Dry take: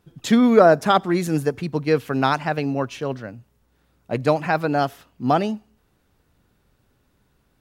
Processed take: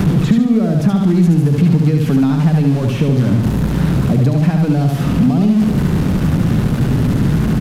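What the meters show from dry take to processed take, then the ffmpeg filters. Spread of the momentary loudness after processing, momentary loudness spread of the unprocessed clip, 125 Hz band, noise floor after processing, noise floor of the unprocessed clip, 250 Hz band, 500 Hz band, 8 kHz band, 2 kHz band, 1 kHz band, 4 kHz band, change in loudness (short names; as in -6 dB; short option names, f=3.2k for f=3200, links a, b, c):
3 LU, 15 LU, +18.0 dB, -18 dBFS, -65 dBFS, +10.5 dB, -2.5 dB, n/a, -1.5 dB, -5.5 dB, +1.5 dB, +6.5 dB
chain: -filter_complex "[0:a]aeval=exprs='val(0)+0.5*0.112*sgn(val(0))':c=same,highshelf=f=4k:g=-9.5,acompressor=threshold=-19dB:ratio=6,aresample=32000,aresample=44100,equalizer=f=170:t=o:w=1.5:g=14.5,asplit=2[a][b];[b]aecho=0:1:71|142|213|284|355:0.631|0.24|0.0911|0.0346|0.0132[c];[a][c]amix=inputs=2:normalize=0,acrossover=split=360|2700[d][e][f];[d]acompressor=threshold=-16dB:ratio=4[g];[e]acompressor=threshold=-34dB:ratio=4[h];[f]acompressor=threshold=-43dB:ratio=4[i];[g][h][i]amix=inputs=3:normalize=0,volume=5.5dB"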